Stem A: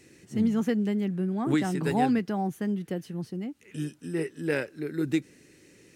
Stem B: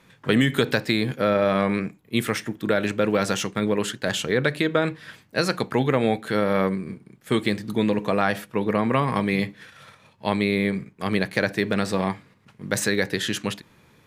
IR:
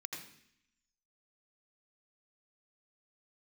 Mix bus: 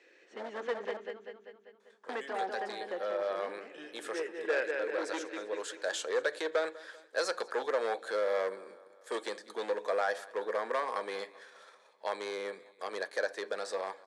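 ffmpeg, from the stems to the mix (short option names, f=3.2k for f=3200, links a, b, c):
-filter_complex "[0:a]lowpass=f=2.7k:t=q:w=2.2,volume=-2dB,asplit=3[a][b][c];[a]atrim=end=0.97,asetpts=PTS-STARTPTS,afade=t=out:st=0.966:d=0.004:c=hsin[d];[b]atrim=start=0.97:end=2.09,asetpts=PTS-STARTPTS,volume=0[e];[c]atrim=start=2.09,asetpts=PTS-STARTPTS,afade=t=in:d=0.004:c=hsin[f];[d][e][f]concat=n=3:v=0:a=1,asplit=4[g][h][i][j];[h]volume=-13dB[k];[i]volume=-5dB[l];[1:a]dynaudnorm=f=490:g=11:m=11.5dB,adelay=1800,volume=-10.5dB,asplit=2[m][n];[n]volume=-23dB[o];[j]apad=whole_len=699775[p];[m][p]sidechaincompress=threshold=-31dB:ratio=4:attack=16:release=1040[q];[2:a]atrim=start_sample=2205[r];[k][r]afir=irnorm=-1:irlink=0[s];[l][o]amix=inputs=2:normalize=0,aecho=0:1:196|392|588|784|980|1176|1372|1568:1|0.56|0.314|0.176|0.0983|0.0551|0.0308|0.0173[t];[g][q][s][t]amix=inputs=4:normalize=0,equalizer=f=2k:w=1.6:g=-9.5,asoftclip=type=hard:threshold=-23.5dB,highpass=f=470:w=0.5412,highpass=f=470:w=1.3066,equalizer=f=510:t=q:w=4:g=4,equalizer=f=1.7k:t=q:w=4:g=8,equalizer=f=2.8k:t=q:w=4:g=-6,lowpass=f=9.2k:w=0.5412,lowpass=f=9.2k:w=1.3066"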